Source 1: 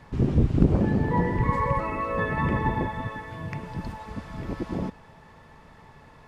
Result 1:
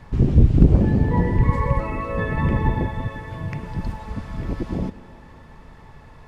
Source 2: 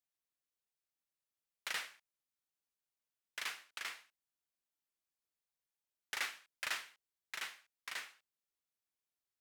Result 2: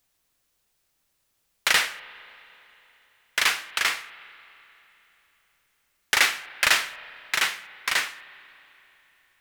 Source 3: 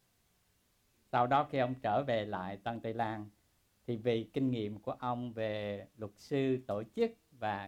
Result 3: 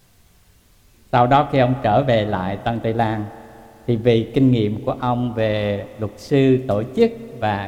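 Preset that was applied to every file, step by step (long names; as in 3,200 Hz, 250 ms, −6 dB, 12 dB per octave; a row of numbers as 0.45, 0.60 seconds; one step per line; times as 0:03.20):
low-shelf EQ 88 Hz +11 dB
spring reverb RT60 3.4 s, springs 31/52 ms, chirp 60 ms, DRR 16.5 dB
dynamic equaliser 1,200 Hz, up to −4 dB, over −40 dBFS, Q 1.1
normalise the peak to −2 dBFS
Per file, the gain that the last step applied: +2.0, +20.0, +16.5 decibels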